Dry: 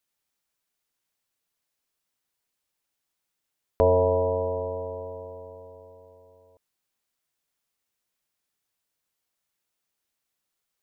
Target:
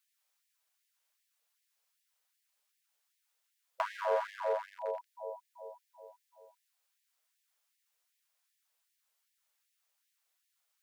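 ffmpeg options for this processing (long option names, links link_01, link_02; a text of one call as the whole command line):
ffmpeg -i in.wav -filter_complex "[0:a]acrossover=split=400|960[link_01][link_02][link_03];[link_01]acompressor=threshold=-39dB:ratio=4[link_04];[link_02]acompressor=threshold=-26dB:ratio=4[link_05];[link_03]acompressor=threshold=-36dB:ratio=4[link_06];[link_04][link_05][link_06]amix=inputs=3:normalize=0,aeval=exprs='clip(val(0),-1,0.0376)':channel_layout=same,afftfilt=real='re*gte(b*sr/1024,420*pow(1700/420,0.5+0.5*sin(2*PI*2.6*pts/sr)))':imag='im*gte(b*sr/1024,420*pow(1700/420,0.5+0.5*sin(2*PI*2.6*pts/sr)))':win_size=1024:overlap=0.75,volume=1.5dB" out.wav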